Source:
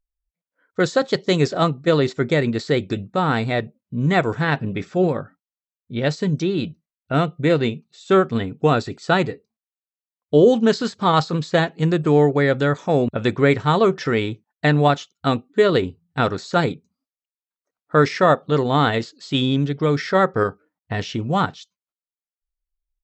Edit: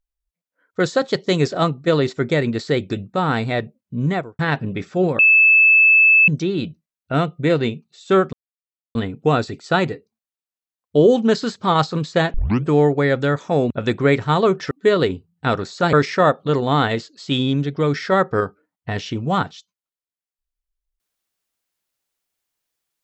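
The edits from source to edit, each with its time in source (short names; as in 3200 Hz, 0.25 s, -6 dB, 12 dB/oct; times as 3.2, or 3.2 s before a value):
4–4.39 studio fade out
5.19–6.28 bleep 2620 Hz -8.5 dBFS
8.33 insert silence 0.62 s
11.72 tape start 0.31 s
14.09–15.44 cut
16.66–17.96 cut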